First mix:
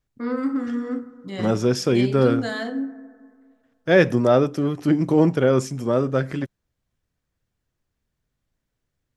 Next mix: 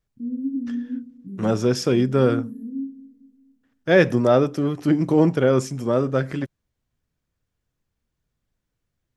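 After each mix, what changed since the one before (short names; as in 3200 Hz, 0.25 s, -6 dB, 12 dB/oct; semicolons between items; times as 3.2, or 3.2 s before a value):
first voice: add inverse Chebyshev band-stop 680–6400 Hz, stop band 50 dB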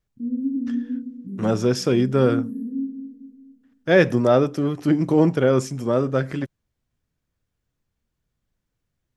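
first voice: send +9.5 dB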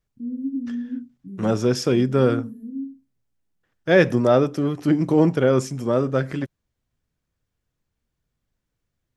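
reverb: off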